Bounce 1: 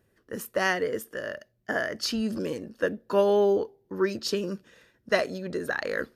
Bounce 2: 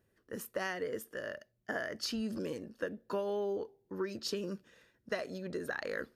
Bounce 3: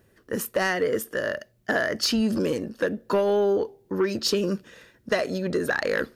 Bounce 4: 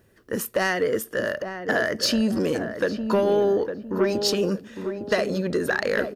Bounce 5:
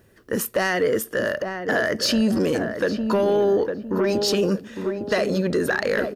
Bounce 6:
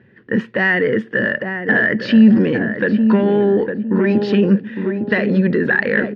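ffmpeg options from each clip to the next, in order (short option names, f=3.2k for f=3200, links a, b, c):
-af "acompressor=threshold=-25dB:ratio=10,volume=-6.5dB"
-af "aeval=exprs='0.0891*sin(PI/2*1.58*val(0)/0.0891)':c=same,volume=6dB"
-filter_complex "[0:a]asplit=2[a][b];[b]adelay=857,lowpass=f=990:p=1,volume=-6.5dB,asplit=2[c][d];[d]adelay=857,lowpass=f=990:p=1,volume=0.38,asplit=2[e][f];[f]adelay=857,lowpass=f=990:p=1,volume=0.38,asplit=2[g][h];[h]adelay=857,lowpass=f=990:p=1,volume=0.38[i];[a][c][e][g][i]amix=inputs=5:normalize=0,volume=1dB"
-af "alimiter=limit=-17dB:level=0:latency=1:release=13,volume=3.5dB"
-af "highpass=110,equalizer=f=130:t=q:w=4:g=8,equalizer=f=210:t=q:w=4:g=9,equalizer=f=640:t=q:w=4:g=-8,equalizer=f=1.2k:t=q:w=4:g=-8,equalizer=f=1.8k:t=q:w=4:g=8,lowpass=f=3k:w=0.5412,lowpass=f=3k:w=1.3066,volume=4dB"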